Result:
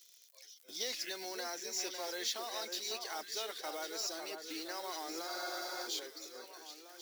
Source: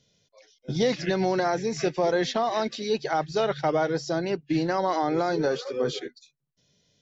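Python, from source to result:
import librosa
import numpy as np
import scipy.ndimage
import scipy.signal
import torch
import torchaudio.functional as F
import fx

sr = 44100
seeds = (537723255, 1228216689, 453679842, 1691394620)

p1 = fx.law_mismatch(x, sr, coded='mu')
p2 = fx.ladder_highpass(p1, sr, hz=250.0, resonance_pct=45)
p3 = fx.high_shelf(p2, sr, hz=5600.0, db=4.0)
p4 = fx.dmg_crackle(p3, sr, seeds[0], per_s=83.0, level_db=-50.0)
p5 = np.diff(p4, prepend=0.0)
p6 = p5 + fx.echo_alternate(p5, sr, ms=550, hz=1500.0, feedback_pct=64, wet_db=-5.5, dry=0)
p7 = fx.spec_freeze(p6, sr, seeds[1], at_s=5.29, hold_s=0.58)
y = p7 * 10.0 ** (7.5 / 20.0)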